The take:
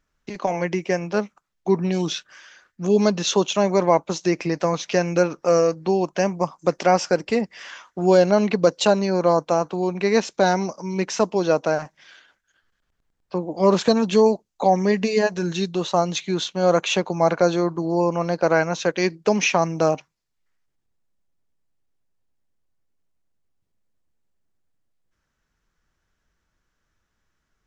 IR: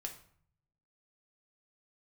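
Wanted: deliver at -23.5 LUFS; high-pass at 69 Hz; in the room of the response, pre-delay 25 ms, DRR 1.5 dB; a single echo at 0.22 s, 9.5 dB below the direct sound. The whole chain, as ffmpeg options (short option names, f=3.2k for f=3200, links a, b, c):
-filter_complex "[0:a]highpass=69,aecho=1:1:220:0.335,asplit=2[a][b];[1:a]atrim=start_sample=2205,adelay=25[c];[b][c]afir=irnorm=-1:irlink=0,volume=0.5dB[d];[a][d]amix=inputs=2:normalize=0,volume=-5dB"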